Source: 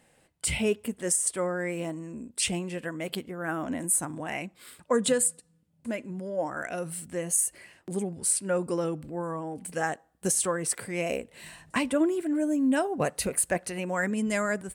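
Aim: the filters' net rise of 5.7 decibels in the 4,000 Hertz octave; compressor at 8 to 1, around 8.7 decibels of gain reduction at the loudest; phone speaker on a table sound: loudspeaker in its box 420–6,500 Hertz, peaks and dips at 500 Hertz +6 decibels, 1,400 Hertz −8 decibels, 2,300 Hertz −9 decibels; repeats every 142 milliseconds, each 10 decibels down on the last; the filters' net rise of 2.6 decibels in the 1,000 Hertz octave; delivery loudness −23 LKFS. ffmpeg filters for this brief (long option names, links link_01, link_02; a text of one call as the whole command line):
ffmpeg -i in.wav -af "equalizer=frequency=1000:width_type=o:gain=4.5,equalizer=frequency=4000:width_type=o:gain=8.5,acompressor=threshold=-27dB:ratio=8,highpass=frequency=420:width=0.5412,highpass=frequency=420:width=1.3066,equalizer=frequency=500:width_type=q:width=4:gain=6,equalizer=frequency=1400:width_type=q:width=4:gain=-8,equalizer=frequency=2300:width_type=q:width=4:gain=-9,lowpass=frequency=6500:width=0.5412,lowpass=frequency=6500:width=1.3066,aecho=1:1:142|284|426|568:0.316|0.101|0.0324|0.0104,volume=11.5dB" out.wav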